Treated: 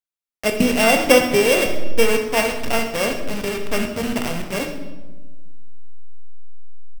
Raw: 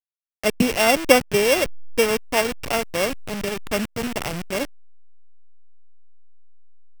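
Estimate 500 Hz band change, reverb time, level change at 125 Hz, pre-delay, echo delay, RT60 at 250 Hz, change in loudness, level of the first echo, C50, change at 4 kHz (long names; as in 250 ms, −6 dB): +2.5 dB, 1.2 s, +2.5 dB, 4 ms, 65 ms, 1.8 s, +2.5 dB, −12.5 dB, 6.5 dB, +2.0 dB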